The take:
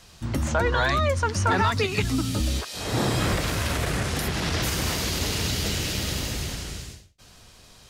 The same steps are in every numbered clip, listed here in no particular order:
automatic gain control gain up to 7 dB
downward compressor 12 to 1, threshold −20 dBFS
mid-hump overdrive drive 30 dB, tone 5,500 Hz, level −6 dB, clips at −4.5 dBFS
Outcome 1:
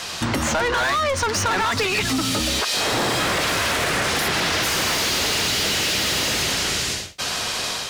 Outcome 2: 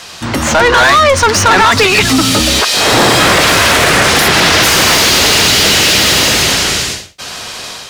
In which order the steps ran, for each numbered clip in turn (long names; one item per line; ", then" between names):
mid-hump overdrive, then automatic gain control, then downward compressor
downward compressor, then mid-hump overdrive, then automatic gain control